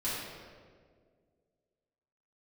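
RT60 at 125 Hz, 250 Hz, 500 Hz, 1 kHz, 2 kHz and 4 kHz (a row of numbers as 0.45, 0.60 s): 2.2, 2.3, 2.2, 1.6, 1.3, 1.1 s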